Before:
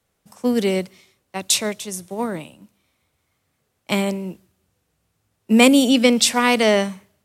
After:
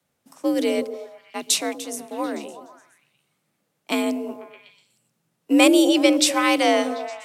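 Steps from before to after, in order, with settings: delay with a stepping band-pass 0.123 s, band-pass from 290 Hz, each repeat 0.7 oct, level -7 dB; frequency shift +60 Hz; gain -2.5 dB

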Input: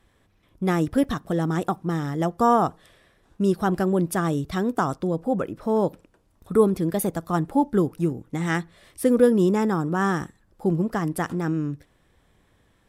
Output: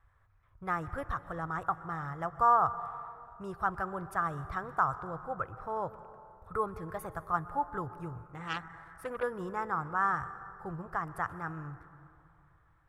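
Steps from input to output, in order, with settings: EQ curve 110 Hz 0 dB, 230 Hz -26 dB, 1300 Hz +3 dB, 3300 Hz -19 dB; plate-style reverb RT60 2.7 s, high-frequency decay 0.5×, pre-delay 0.11 s, DRR 14 dB; 8.23–9.23 core saturation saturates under 1900 Hz; gain -2 dB

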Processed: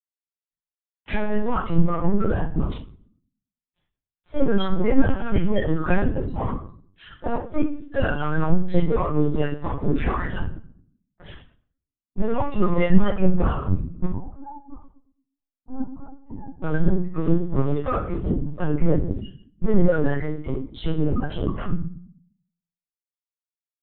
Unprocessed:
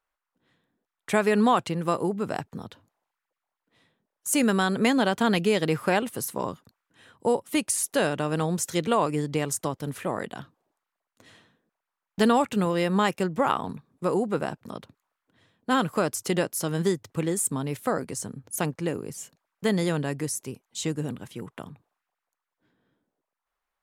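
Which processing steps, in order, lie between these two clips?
bin magnitudes rounded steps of 30 dB; reverb removal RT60 1.3 s; de-esser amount 90%; gate with hold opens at -58 dBFS; compressor 8:1, threshold -36 dBFS, peak gain reduction 17 dB; sample leveller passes 5; 14.05–16.63 double band-pass 480 Hz, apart 1.6 oct; reverb RT60 0.75 s, pre-delay 3 ms, DRR -7.5 dB; LPC vocoder at 8 kHz pitch kept; spectral expander 1.5:1; gain +1 dB

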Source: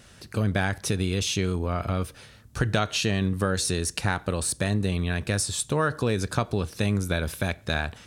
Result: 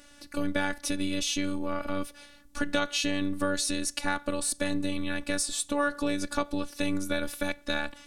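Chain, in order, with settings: robotiser 289 Hz

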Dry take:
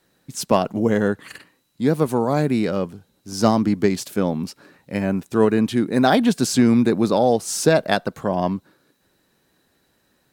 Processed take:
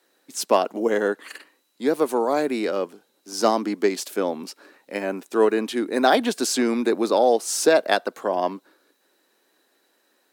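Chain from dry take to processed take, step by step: HPF 300 Hz 24 dB/oct

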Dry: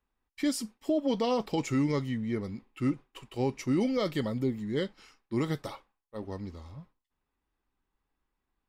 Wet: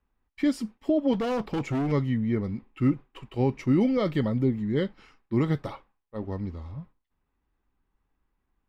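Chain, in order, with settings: tone controls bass +5 dB, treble -13 dB; 1.13–1.92 hard clip -27.5 dBFS, distortion -13 dB; gain +3 dB

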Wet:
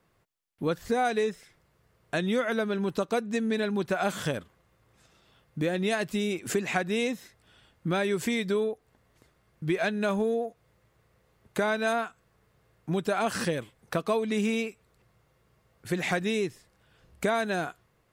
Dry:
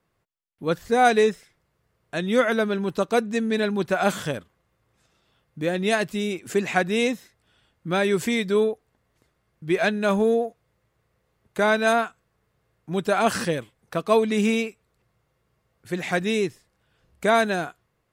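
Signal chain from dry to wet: compressor 4:1, threshold -30 dBFS, peak gain reduction 14.5 dB; gain +4 dB

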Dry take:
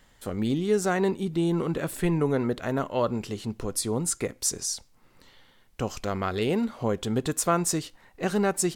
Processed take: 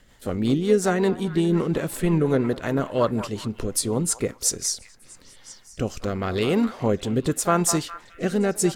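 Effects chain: delay with a stepping band-pass 0.205 s, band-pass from 920 Hz, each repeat 0.7 oct, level -10 dB; harmoniser +3 st -15 dB; rotary speaker horn 5.5 Hz, later 0.85 Hz, at 4.69; gain +5.5 dB

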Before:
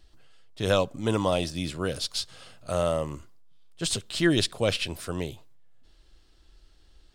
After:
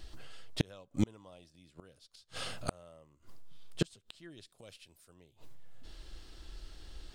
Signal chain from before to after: 4.46–5.14 high shelf 5300 Hz +11.5 dB; flipped gate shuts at -25 dBFS, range -38 dB; gain +8.5 dB

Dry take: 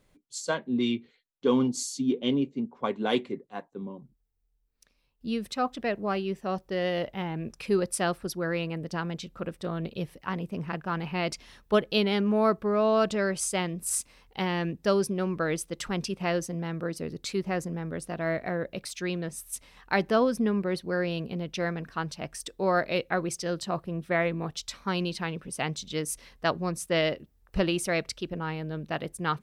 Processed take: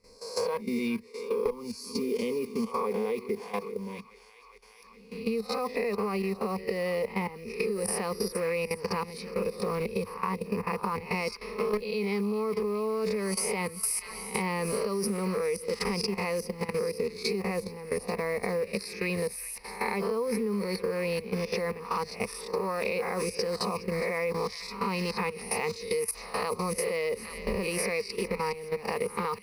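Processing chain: spectral swells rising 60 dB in 0.59 s; small resonant body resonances 460/730/1200/2500 Hz, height 7 dB, ringing for 20 ms; on a send: thin delay 0.414 s, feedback 70%, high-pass 1600 Hz, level -12.5 dB; on the sum: modulation noise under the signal 25 dB; level quantiser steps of 15 dB; one-sided clip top -16 dBFS; ripple EQ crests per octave 0.88, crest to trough 17 dB; compressor 12:1, threshold -28 dBFS, peak gain reduction 19.5 dB; gain +2 dB

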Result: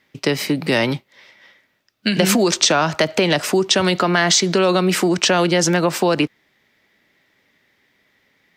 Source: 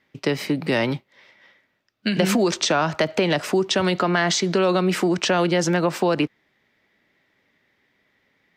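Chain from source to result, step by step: high shelf 4000 Hz +8 dB; gain +3 dB

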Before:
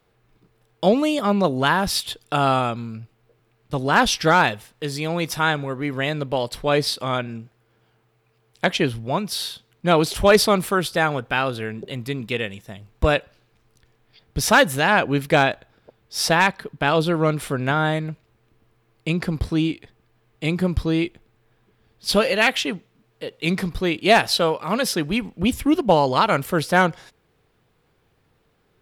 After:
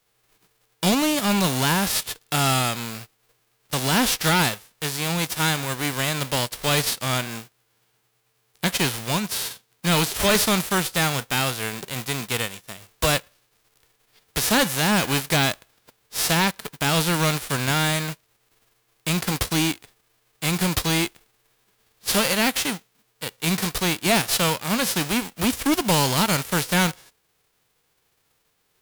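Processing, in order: spectral whitening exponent 0.3; sample leveller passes 1; soft clip -11.5 dBFS, distortion -10 dB; gain -2.5 dB

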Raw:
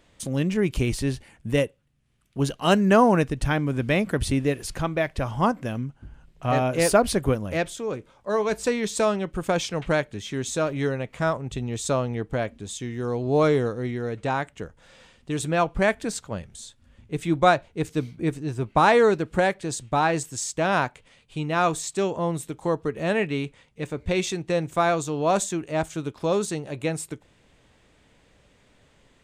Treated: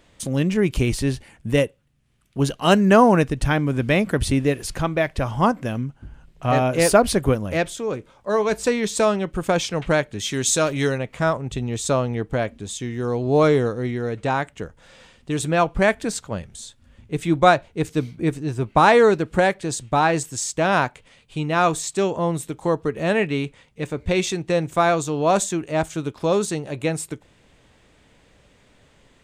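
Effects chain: 10.19–10.98 high shelf 2800 Hz +10.5 dB; gain +3.5 dB

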